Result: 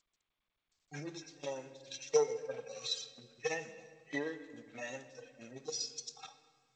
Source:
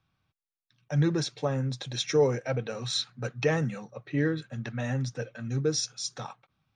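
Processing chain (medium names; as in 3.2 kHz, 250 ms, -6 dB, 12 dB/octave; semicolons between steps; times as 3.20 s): harmonic-percussive separation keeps harmonic; peaking EQ 1.3 kHz -13.5 dB 1.3 oct; transient shaper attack +11 dB, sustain -3 dB; high-pass 800 Hz 12 dB/octave; tilt EQ +1.5 dB/octave; gate with hold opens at -60 dBFS; on a send at -11.5 dB: reverberation RT60 1.7 s, pre-delay 16 ms; on the sum: trim +3 dB; G.722 64 kbps 16 kHz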